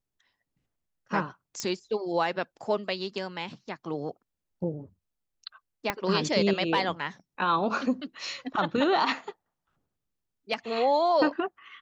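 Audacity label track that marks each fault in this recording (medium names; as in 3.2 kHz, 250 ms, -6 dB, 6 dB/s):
1.600000	1.600000	pop -16 dBFS
5.900000	5.900000	pop -11 dBFS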